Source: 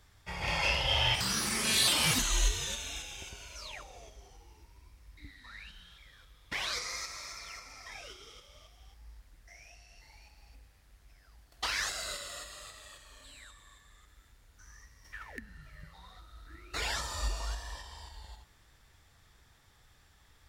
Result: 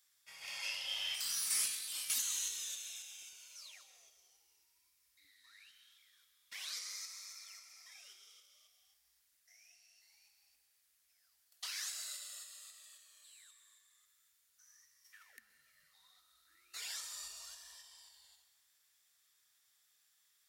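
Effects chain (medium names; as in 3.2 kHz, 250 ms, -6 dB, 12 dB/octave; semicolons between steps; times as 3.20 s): 1.50–2.10 s: compressor with a negative ratio -32 dBFS, ratio -0.5; differentiator; band-stop 880 Hz, Q 12; reverberation RT60 1.2 s, pre-delay 120 ms, DRR 11.5 dB; trim -3 dB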